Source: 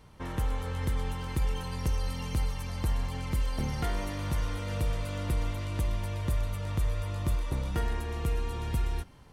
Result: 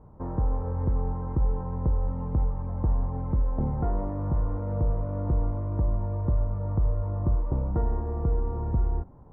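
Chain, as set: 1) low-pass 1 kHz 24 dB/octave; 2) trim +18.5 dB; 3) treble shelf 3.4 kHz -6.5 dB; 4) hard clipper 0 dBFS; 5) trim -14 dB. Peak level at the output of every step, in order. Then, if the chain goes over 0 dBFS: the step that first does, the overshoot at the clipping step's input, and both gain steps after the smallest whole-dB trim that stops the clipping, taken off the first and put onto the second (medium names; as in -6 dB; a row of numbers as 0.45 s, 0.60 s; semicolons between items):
-21.0 dBFS, -2.5 dBFS, -2.5 dBFS, -2.5 dBFS, -16.5 dBFS; nothing clips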